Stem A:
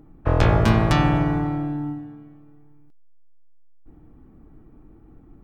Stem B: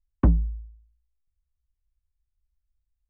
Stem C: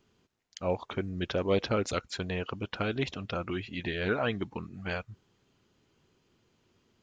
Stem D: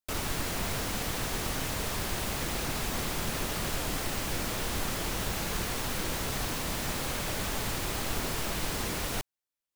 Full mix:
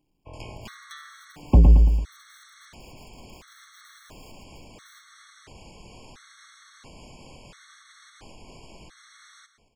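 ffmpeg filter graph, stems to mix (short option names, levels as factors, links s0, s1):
-filter_complex "[0:a]tiltshelf=f=1400:g=-8,volume=0.133[s0];[1:a]aecho=1:1:1.5:0.65,asoftclip=type=tanh:threshold=0.398,aeval=exprs='0.335*(cos(1*acos(clip(val(0)/0.335,-1,1)))-cos(1*PI/2))+0.0473*(cos(5*acos(clip(val(0)/0.335,-1,1)))-cos(5*PI/2))':c=same,adelay=1300,volume=1.41,asplit=2[s1][s2];[s2]volume=0.562[s3];[2:a]alimiter=level_in=1.19:limit=0.0631:level=0:latency=1:release=222,volume=0.841,aeval=exprs='(mod(79.4*val(0)+1,2)-1)/79.4':c=same,acrusher=bits=10:mix=0:aa=0.000001,volume=0.282,asplit=2[s4][s5];[s5]volume=0.15[s6];[3:a]lowpass=f=7900:w=0.5412,lowpass=f=7900:w=1.3066,alimiter=level_in=1.88:limit=0.0631:level=0:latency=1:release=308,volume=0.531,adelay=250,volume=0.473,asplit=2[s7][s8];[s8]volume=0.237[s9];[s3][s6][s9]amix=inputs=3:normalize=0,aecho=0:1:112|224|336|448|560|672|784:1|0.48|0.23|0.111|0.0531|0.0255|0.0122[s10];[s0][s1][s4][s7][s10]amix=inputs=5:normalize=0,afftfilt=real='re*gt(sin(2*PI*0.73*pts/sr)*(1-2*mod(floor(b*sr/1024/1100),2)),0)':imag='im*gt(sin(2*PI*0.73*pts/sr)*(1-2*mod(floor(b*sr/1024/1100),2)),0)':win_size=1024:overlap=0.75"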